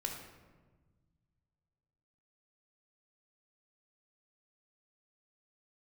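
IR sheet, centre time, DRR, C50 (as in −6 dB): 41 ms, 1.5 dB, 4.0 dB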